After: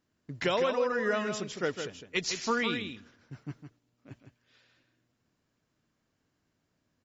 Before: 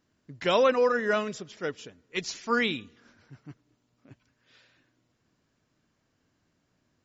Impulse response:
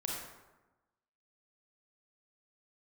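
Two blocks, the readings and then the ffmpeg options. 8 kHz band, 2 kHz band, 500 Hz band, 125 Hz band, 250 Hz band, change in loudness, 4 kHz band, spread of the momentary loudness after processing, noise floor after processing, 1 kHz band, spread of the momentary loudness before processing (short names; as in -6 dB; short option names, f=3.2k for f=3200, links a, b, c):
n/a, -2.5 dB, -4.5 dB, +2.0 dB, -1.5 dB, -3.5 dB, -1.0 dB, 18 LU, -79 dBFS, -4.0 dB, 14 LU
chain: -af "agate=range=-9dB:threshold=-56dB:ratio=16:detection=peak,acompressor=threshold=-30dB:ratio=6,aecho=1:1:158:0.422,volume=4dB"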